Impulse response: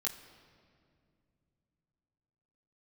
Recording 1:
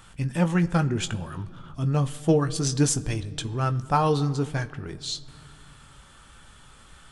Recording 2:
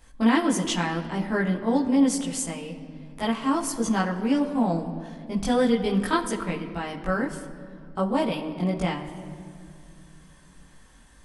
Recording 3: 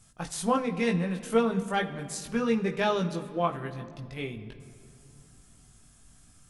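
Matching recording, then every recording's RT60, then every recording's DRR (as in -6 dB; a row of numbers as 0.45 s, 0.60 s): 2; no single decay rate, no single decay rate, no single decay rate; 9.0 dB, -3.5 dB, 2.0 dB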